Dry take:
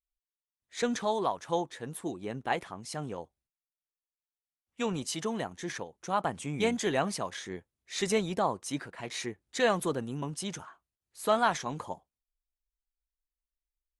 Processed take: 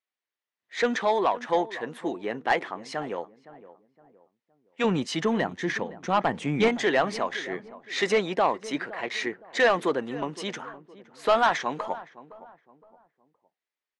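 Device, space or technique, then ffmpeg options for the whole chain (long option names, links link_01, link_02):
intercom: -filter_complex "[0:a]asettb=1/sr,asplit=3[link_01][link_02][link_03];[link_01]atrim=end=4.844[link_04];[link_02]atrim=start=4.84:end=6.68,asetpts=PTS-STARTPTS,afade=type=in:duration=0.004:curve=qsin,afade=type=out:start_time=1.836:duration=0.004:curve=qsin,bass=frequency=250:gain=13,treble=frequency=4000:gain=1[link_05];[link_03]atrim=start=6.676[link_06];[link_04][link_05]acrossfade=duration=0.004:curve1=hsin:curve2=qsin[link_07];[link_07][link_06]acrossfade=duration=0.004:curve1=qsin:curve2=hsin,highpass=300,lowpass=3700,equalizer=frequency=1900:width_type=o:width=0.36:gain=5.5,asoftclip=type=tanh:threshold=-21dB,asplit=2[link_08][link_09];[link_09]adelay=515,lowpass=frequency=1100:poles=1,volume=-16dB,asplit=2[link_10][link_11];[link_11]adelay=515,lowpass=frequency=1100:poles=1,volume=0.38,asplit=2[link_12][link_13];[link_13]adelay=515,lowpass=frequency=1100:poles=1,volume=0.38[link_14];[link_08][link_10][link_12][link_14]amix=inputs=4:normalize=0,volume=8dB"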